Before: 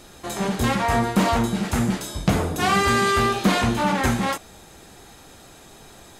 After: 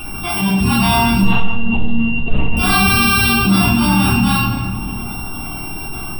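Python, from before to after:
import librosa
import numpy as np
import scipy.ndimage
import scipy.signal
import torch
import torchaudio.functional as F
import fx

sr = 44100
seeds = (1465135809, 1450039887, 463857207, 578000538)

p1 = np.r_[np.sort(x[:len(x) // 16 * 16].reshape(-1, 16), axis=1).ravel(), x[len(x) // 16 * 16:]]
p2 = fx.spec_gate(p1, sr, threshold_db=-20, keep='strong')
p3 = fx.high_shelf(p2, sr, hz=2100.0, db=8.5)
p4 = fx.quant_float(p3, sr, bits=2)
p5 = fx.fixed_phaser(p4, sr, hz=1900.0, stages=6)
p6 = fx.lpc_monotone(p5, sr, seeds[0], pitch_hz=230.0, order=8, at=(1.22, 2.57))
p7 = p6 + fx.echo_tape(p6, sr, ms=299, feedback_pct=67, wet_db=-21, lp_hz=1700.0, drive_db=4.0, wow_cents=33, dry=0)
p8 = fx.room_shoebox(p7, sr, seeds[1], volume_m3=400.0, walls='mixed', distance_m=3.5)
p9 = fx.env_flatten(p8, sr, amount_pct=50)
y = p9 * 10.0 ** (-8.5 / 20.0)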